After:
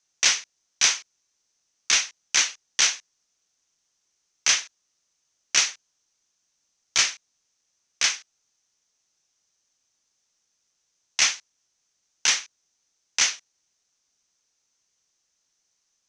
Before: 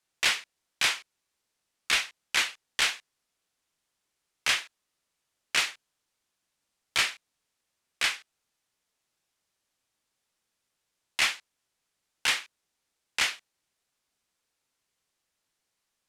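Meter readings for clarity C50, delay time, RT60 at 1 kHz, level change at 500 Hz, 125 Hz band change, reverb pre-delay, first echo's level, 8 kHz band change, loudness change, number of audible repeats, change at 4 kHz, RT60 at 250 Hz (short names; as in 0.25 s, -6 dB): none, none, none, 0.0 dB, n/a, none, none, +12.5 dB, +5.5 dB, none, +4.5 dB, none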